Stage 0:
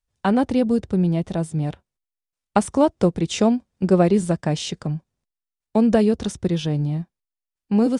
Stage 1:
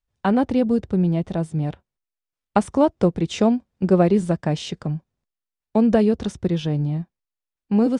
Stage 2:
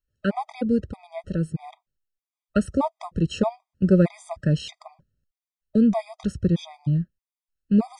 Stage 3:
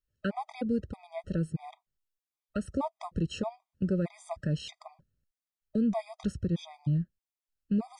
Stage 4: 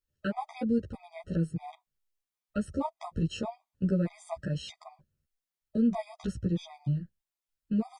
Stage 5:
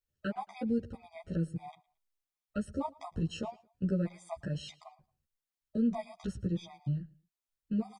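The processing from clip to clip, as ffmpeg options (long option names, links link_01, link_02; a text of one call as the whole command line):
ffmpeg -i in.wav -af "highshelf=frequency=5900:gain=-11" out.wav
ffmpeg -i in.wav -af "asubboost=boost=2.5:cutoff=180,afftfilt=real='re*gt(sin(2*PI*1.6*pts/sr)*(1-2*mod(floor(b*sr/1024/640),2)),0)':imag='im*gt(sin(2*PI*1.6*pts/sr)*(1-2*mod(floor(b*sr/1024/640),2)),0)':win_size=1024:overlap=0.75,volume=-1dB" out.wav
ffmpeg -i in.wav -af "alimiter=limit=-16.5dB:level=0:latency=1:release=253,volume=-4dB" out.wav
ffmpeg -i in.wav -filter_complex "[0:a]asplit=2[link_01][link_02];[link_02]adelay=11.6,afreqshift=0.42[link_03];[link_01][link_03]amix=inputs=2:normalize=1,volume=3dB" out.wav
ffmpeg -i in.wav -af "aecho=1:1:112|224:0.0668|0.0201,volume=-3.5dB" out.wav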